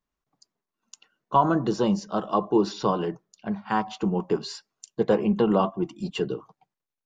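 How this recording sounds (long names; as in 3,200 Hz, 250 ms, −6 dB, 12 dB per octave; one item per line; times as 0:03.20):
background noise floor −88 dBFS
spectral slope −6.0 dB per octave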